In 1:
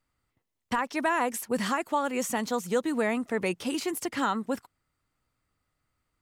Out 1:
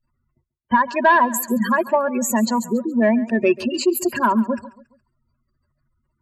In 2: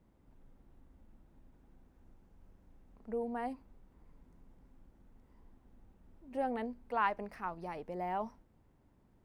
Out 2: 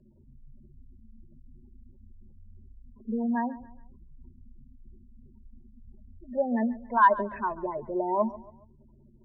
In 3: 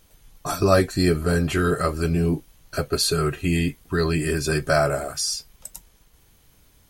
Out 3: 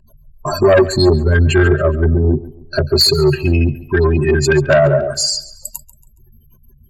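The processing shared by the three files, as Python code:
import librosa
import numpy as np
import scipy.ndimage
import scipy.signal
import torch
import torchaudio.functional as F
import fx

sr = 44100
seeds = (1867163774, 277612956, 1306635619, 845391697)

y = fx.spec_gate(x, sr, threshold_db=-15, keep='strong')
y = fx.ripple_eq(y, sr, per_octave=1.4, db=17)
y = fx.cheby_harmonics(y, sr, harmonics=(5,), levels_db=(-13,), full_scale_db=-2.5)
y = fx.echo_feedback(y, sr, ms=139, feedback_pct=39, wet_db=-18.0)
y = y * 10.0 ** (1.0 / 20.0)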